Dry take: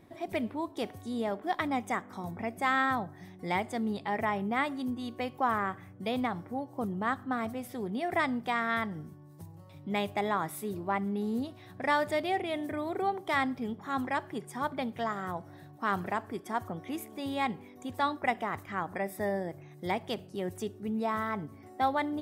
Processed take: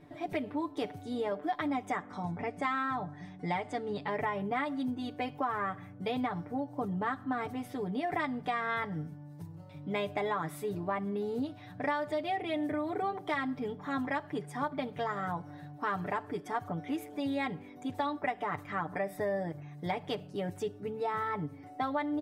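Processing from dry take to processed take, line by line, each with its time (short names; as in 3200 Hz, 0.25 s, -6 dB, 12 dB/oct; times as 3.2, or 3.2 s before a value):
1.9–4.08 LPF 9300 Hz 24 dB/oct
whole clip: high shelf 6500 Hz -12 dB; comb 6.8 ms, depth 85%; compressor, threshold -29 dBFS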